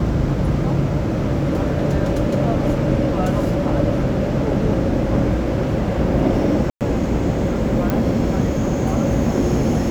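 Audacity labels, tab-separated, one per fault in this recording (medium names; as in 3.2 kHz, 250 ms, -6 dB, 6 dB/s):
6.700000	6.810000	dropout 108 ms
7.900000	7.900000	pop -7 dBFS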